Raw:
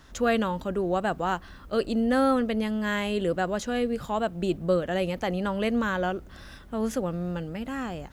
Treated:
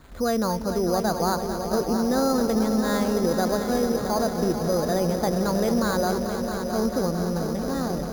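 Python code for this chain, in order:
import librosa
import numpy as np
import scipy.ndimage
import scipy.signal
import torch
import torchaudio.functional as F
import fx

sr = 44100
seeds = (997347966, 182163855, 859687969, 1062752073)

p1 = scipy.signal.sosfilt(scipy.signal.butter(2, 1300.0, 'lowpass', fs=sr, output='sos'), x)
p2 = fx.over_compress(p1, sr, threshold_db=-27.0, ratio=-1.0)
p3 = p1 + (p2 * 10.0 ** (0.0 / 20.0))
p4 = fx.dmg_crackle(p3, sr, seeds[0], per_s=300.0, level_db=-31.0)
p5 = p4 + fx.echo_heads(p4, sr, ms=222, heads='all three', feedback_pct=73, wet_db=-12.0, dry=0)
p6 = np.repeat(scipy.signal.resample_poly(p5, 1, 8), 8)[:len(p5)]
y = p6 * 10.0 ** (-3.0 / 20.0)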